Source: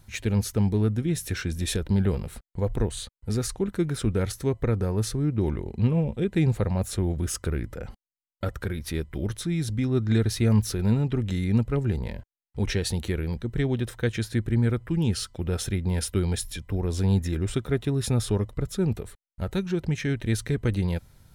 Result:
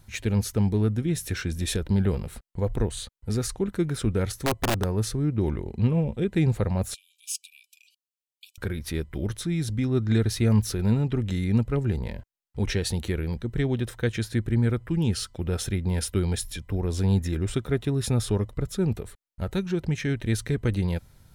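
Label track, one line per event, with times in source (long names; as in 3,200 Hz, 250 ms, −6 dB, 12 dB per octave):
4.430000	4.840000	wrap-around overflow gain 17 dB
6.940000	8.580000	linear-phase brick-wall high-pass 2,300 Hz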